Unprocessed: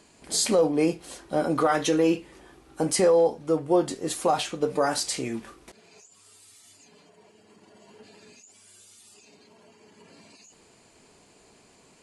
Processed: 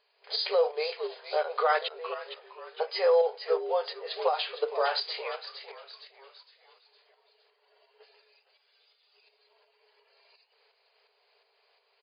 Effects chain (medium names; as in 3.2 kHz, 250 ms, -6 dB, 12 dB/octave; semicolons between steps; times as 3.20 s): gate -49 dBFS, range -8 dB; 1.78–2.19 s: slow attack 740 ms; tilt EQ +1.5 dB/octave; frequency-shifting echo 461 ms, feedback 44%, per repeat -98 Hz, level -10.5 dB; tremolo saw up 2.8 Hz, depth 50%; FFT band-pass 390–5000 Hz